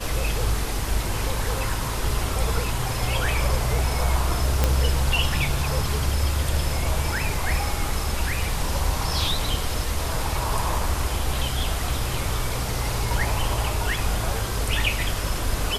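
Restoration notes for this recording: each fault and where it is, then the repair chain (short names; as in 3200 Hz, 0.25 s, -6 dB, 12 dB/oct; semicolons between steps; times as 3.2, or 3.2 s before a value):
4.64 pop -5 dBFS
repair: de-click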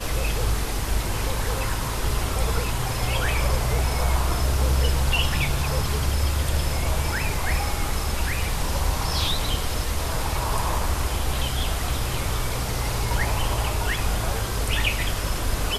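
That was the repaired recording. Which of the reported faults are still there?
none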